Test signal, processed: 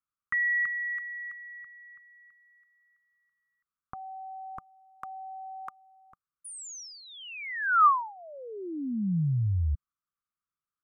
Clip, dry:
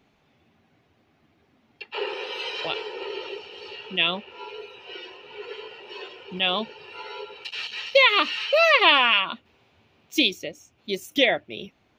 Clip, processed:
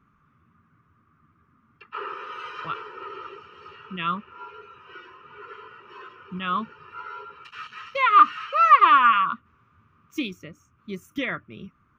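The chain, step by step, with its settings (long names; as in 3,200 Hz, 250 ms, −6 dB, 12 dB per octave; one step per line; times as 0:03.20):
drawn EQ curve 170 Hz 0 dB, 780 Hz −22 dB, 1,200 Hz +10 dB, 1,800 Hz −8 dB, 4,200 Hz −24 dB, 6,000 Hz −16 dB
level +4 dB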